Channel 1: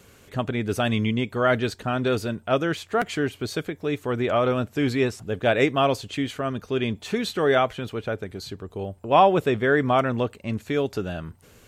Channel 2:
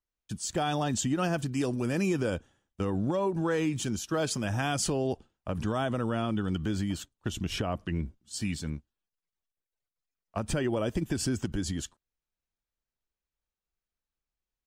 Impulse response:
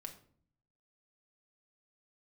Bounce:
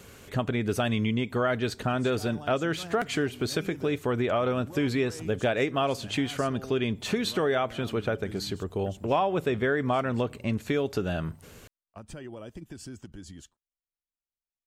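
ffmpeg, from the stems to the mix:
-filter_complex "[0:a]volume=2dB,asplit=2[link_01][link_02];[link_02]volume=-13dB[link_03];[1:a]adelay=1600,volume=-12.5dB[link_04];[2:a]atrim=start_sample=2205[link_05];[link_03][link_05]afir=irnorm=-1:irlink=0[link_06];[link_01][link_04][link_06]amix=inputs=3:normalize=0,acompressor=threshold=-24dB:ratio=4"

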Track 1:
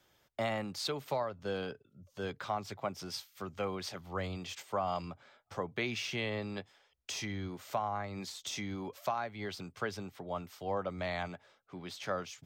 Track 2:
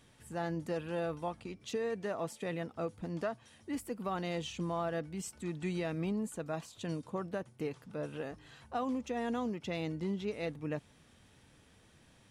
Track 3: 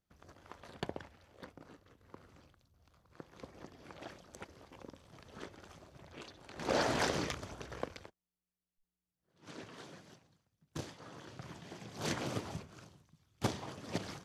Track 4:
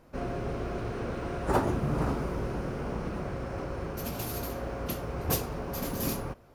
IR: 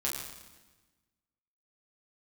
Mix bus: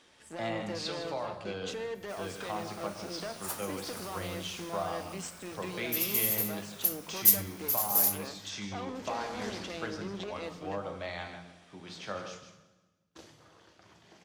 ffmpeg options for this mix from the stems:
-filter_complex "[0:a]lowpass=5600,volume=-7.5dB,asplit=3[link_01][link_02][link_03];[link_02]volume=-4dB[link_04];[link_03]volume=-6dB[link_05];[1:a]aeval=exprs='0.0631*(cos(1*acos(clip(val(0)/0.0631,-1,1)))-cos(1*PI/2))+0.00631*(cos(8*acos(clip(val(0)/0.0631,-1,1)))-cos(8*PI/2))':channel_layout=same,volume=2.5dB,asplit=2[link_06][link_07];[link_07]volume=-21.5dB[link_08];[2:a]adelay=2400,volume=-10dB,asplit=2[link_09][link_10];[link_10]volume=-9dB[link_11];[3:a]aderivative,adelay=1950,volume=1.5dB[link_12];[link_06][link_09]amix=inputs=2:normalize=0,highpass=300,lowpass=5800,alimiter=level_in=8.5dB:limit=-24dB:level=0:latency=1:release=108,volume=-8.5dB,volume=0dB[link_13];[4:a]atrim=start_sample=2205[link_14];[link_04][link_08][link_11]amix=inputs=3:normalize=0[link_15];[link_15][link_14]afir=irnorm=-1:irlink=0[link_16];[link_05]aecho=0:1:157:1[link_17];[link_01][link_12][link_13][link_16][link_17]amix=inputs=5:normalize=0,highshelf=frequency=5000:gain=8.5"

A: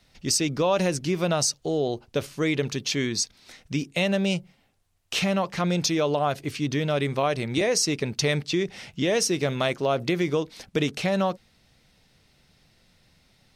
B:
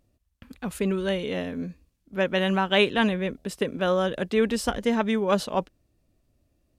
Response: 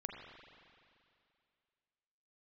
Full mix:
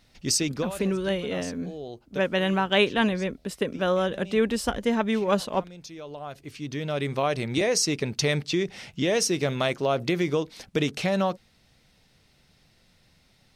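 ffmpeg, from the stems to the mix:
-filter_complex "[0:a]volume=-0.5dB[link_01];[1:a]volume=-0.5dB,asplit=2[link_02][link_03];[link_03]apad=whole_len=597959[link_04];[link_01][link_04]sidechaincompress=threshold=-40dB:ratio=10:attack=16:release=1130[link_05];[link_05][link_02]amix=inputs=2:normalize=0"

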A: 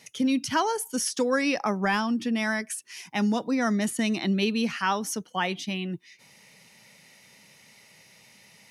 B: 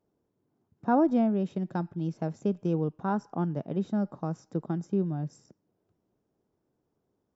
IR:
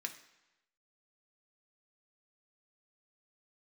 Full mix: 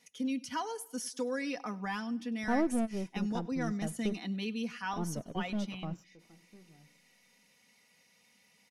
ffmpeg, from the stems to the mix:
-filter_complex "[0:a]aecho=1:1:4.1:0.64,volume=-13.5dB,asplit=3[link_01][link_02][link_03];[link_02]volume=-23dB[link_04];[1:a]aeval=exprs='if(lt(val(0),0),0.447*val(0),val(0))':channel_layout=same,adelay=1600,volume=-4dB,asplit=3[link_05][link_06][link_07];[link_05]atrim=end=4.22,asetpts=PTS-STARTPTS,afade=type=out:start_time=4.216:duration=0.004:curve=hsin[link_08];[link_06]atrim=start=4.22:end=4.92,asetpts=PTS-STARTPTS,volume=0[link_09];[link_07]atrim=start=4.92,asetpts=PTS-STARTPTS,afade=type=in:duration=0.004:curve=hsin[link_10];[link_08][link_09][link_10]concat=n=3:v=0:a=1,asplit=2[link_11][link_12];[link_12]volume=-21dB[link_13];[link_03]apad=whole_len=394828[link_14];[link_11][link_14]sidechaingate=range=-25dB:threshold=-54dB:ratio=16:detection=peak[link_15];[2:a]atrim=start_sample=2205[link_16];[link_13][link_16]afir=irnorm=-1:irlink=0[link_17];[link_04]aecho=0:1:99|198|297|396|495|594|693:1|0.47|0.221|0.104|0.0488|0.0229|0.0108[link_18];[link_01][link_15][link_17][link_18]amix=inputs=4:normalize=0"

